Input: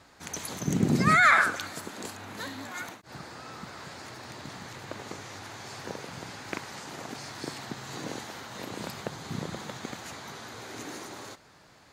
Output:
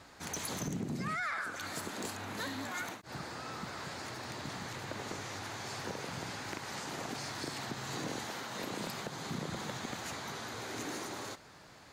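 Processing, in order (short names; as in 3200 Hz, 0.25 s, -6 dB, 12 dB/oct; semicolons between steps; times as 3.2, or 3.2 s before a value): 8.3–9.49 HPF 130 Hz; compressor 16:1, threshold -32 dBFS, peak gain reduction 17 dB; soft clip -30.5 dBFS, distortion -16 dB; gain +1 dB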